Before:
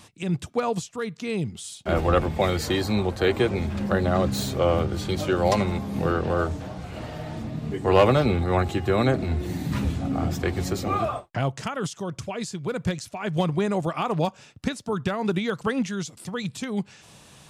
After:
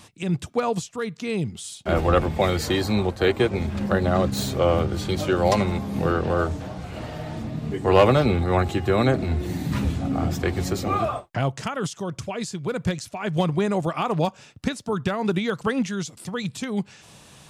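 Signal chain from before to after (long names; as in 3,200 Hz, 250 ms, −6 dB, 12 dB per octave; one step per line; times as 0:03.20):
0:03.07–0:04.37: transient designer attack 0 dB, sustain −5 dB
level +1.5 dB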